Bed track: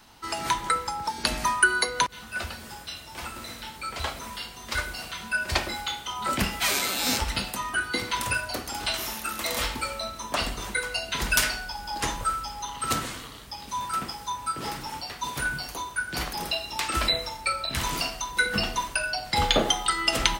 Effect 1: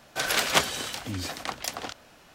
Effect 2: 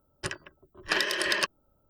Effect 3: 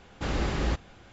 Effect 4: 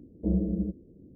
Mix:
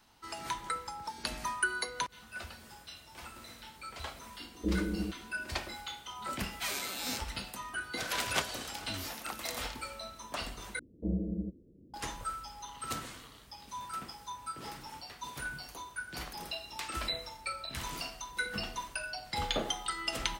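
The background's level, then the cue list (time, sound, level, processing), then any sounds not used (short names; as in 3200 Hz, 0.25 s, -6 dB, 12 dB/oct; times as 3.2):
bed track -11 dB
4.4 add 4 -1 dB + fixed phaser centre 340 Hz, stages 4
7.81 add 1 -10 dB
10.79 replace with 4 -6.5 dB
not used: 2, 3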